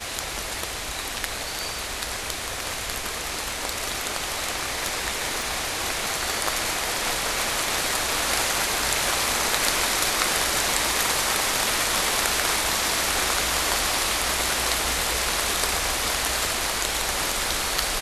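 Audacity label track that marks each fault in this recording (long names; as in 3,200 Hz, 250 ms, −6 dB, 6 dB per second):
5.420000	5.420000	click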